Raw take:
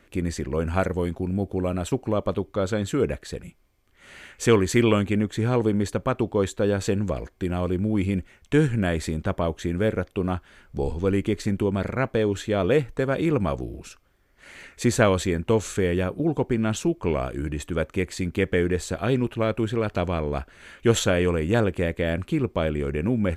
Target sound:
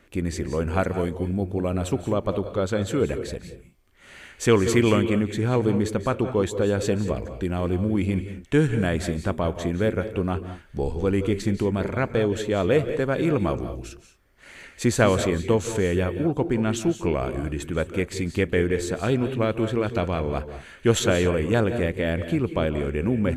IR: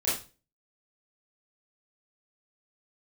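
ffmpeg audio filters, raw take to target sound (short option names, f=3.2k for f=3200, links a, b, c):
-filter_complex "[0:a]asplit=2[a][b];[1:a]atrim=start_sample=2205,afade=t=out:st=0.15:d=0.01,atrim=end_sample=7056,adelay=145[c];[b][c]afir=irnorm=-1:irlink=0,volume=-18.5dB[d];[a][d]amix=inputs=2:normalize=0"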